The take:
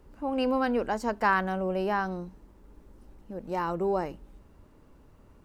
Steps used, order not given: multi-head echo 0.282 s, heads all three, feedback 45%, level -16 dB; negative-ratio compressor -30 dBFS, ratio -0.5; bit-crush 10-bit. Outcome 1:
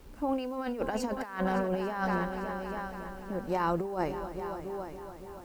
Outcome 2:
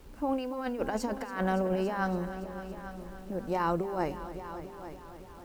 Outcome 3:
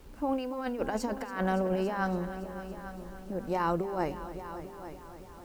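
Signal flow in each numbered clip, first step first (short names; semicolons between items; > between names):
multi-head echo > negative-ratio compressor > bit-crush; negative-ratio compressor > bit-crush > multi-head echo; negative-ratio compressor > multi-head echo > bit-crush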